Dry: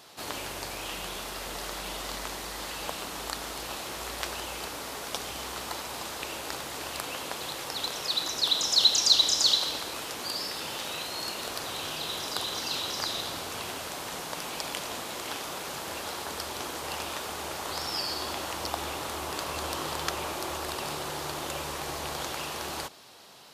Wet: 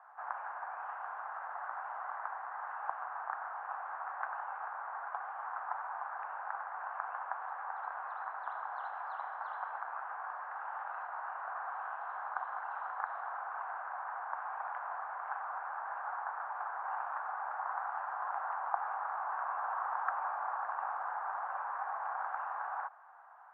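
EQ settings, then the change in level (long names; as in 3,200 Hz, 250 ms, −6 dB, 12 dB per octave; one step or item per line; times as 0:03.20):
Chebyshev band-pass filter 750–1,600 Hz, order 3
high-frequency loss of the air 430 metres
+4.0 dB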